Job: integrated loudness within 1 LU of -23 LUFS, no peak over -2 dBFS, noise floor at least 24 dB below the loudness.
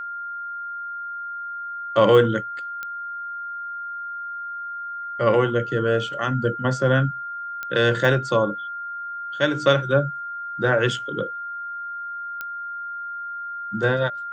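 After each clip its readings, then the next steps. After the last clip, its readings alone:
clicks 5; steady tone 1400 Hz; tone level -29 dBFS; loudness -24.0 LUFS; peak -3.5 dBFS; loudness target -23.0 LUFS
-> de-click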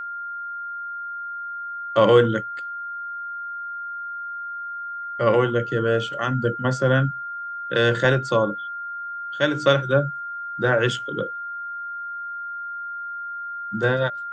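clicks 0; steady tone 1400 Hz; tone level -29 dBFS
-> notch 1400 Hz, Q 30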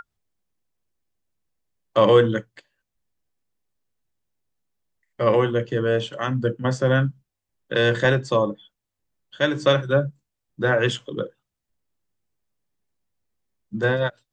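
steady tone none; loudness -22.0 LUFS; peak -4.0 dBFS; loudness target -23.0 LUFS
-> gain -1 dB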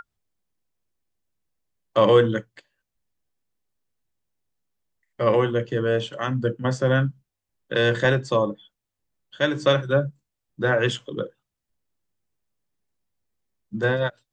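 loudness -23.0 LUFS; peak -5.0 dBFS; noise floor -83 dBFS

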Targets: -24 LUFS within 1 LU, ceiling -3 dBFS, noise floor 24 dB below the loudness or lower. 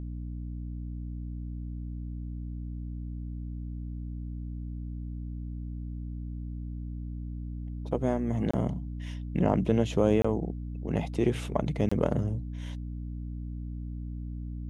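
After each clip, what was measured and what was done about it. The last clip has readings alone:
dropouts 3; longest dropout 25 ms; hum 60 Hz; harmonics up to 300 Hz; hum level -34 dBFS; loudness -33.0 LUFS; peak -9.0 dBFS; loudness target -24.0 LUFS
-> interpolate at 8.51/10.22/11.89, 25 ms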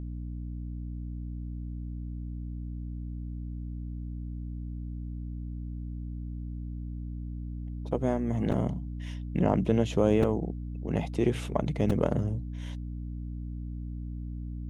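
dropouts 0; hum 60 Hz; harmonics up to 300 Hz; hum level -34 dBFS
-> notches 60/120/180/240/300 Hz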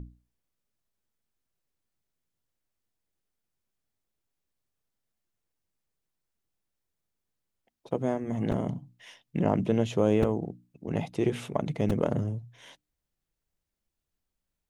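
hum none; loudness -29.5 LUFS; peak -10.0 dBFS; loudness target -24.0 LUFS
-> gain +5.5 dB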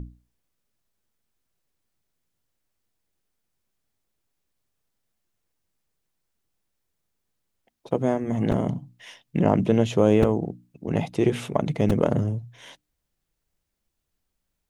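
loudness -24.0 LUFS; peak -4.5 dBFS; noise floor -80 dBFS

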